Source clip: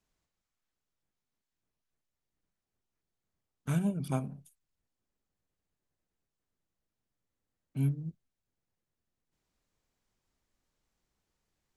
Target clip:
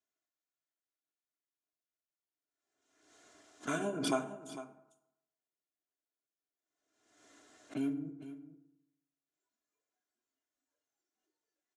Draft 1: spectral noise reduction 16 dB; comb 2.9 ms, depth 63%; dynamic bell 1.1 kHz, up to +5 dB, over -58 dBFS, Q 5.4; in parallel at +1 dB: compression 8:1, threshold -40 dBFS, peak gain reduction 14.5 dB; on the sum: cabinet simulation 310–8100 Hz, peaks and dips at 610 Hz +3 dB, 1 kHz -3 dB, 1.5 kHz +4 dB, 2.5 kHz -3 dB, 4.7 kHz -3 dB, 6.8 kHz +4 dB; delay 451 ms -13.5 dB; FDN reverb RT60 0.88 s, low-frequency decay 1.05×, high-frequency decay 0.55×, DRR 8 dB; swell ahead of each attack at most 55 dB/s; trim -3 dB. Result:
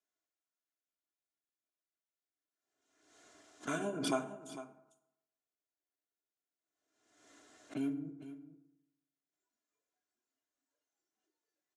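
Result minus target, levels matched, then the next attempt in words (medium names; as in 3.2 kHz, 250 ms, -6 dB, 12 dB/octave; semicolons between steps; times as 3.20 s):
compression: peak gain reduction +5 dB
spectral noise reduction 16 dB; comb 2.9 ms, depth 63%; dynamic bell 1.1 kHz, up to +5 dB, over -58 dBFS, Q 5.4; in parallel at +1 dB: compression 8:1, threshold -34 dBFS, peak gain reduction 9 dB; on the sum: cabinet simulation 310–8100 Hz, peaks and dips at 610 Hz +3 dB, 1 kHz -3 dB, 1.5 kHz +4 dB, 2.5 kHz -3 dB, 4.7 kHz -3 dB, 6.8 kHz +4 dB; delay 451 ms -13.5 dB; FDN reverb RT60 0.88 s, low-frequency decay 1.05×, high-frequency decay 0.55×, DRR 8 dB; swell ahead of each attack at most 55 dB/s; trim -3 dB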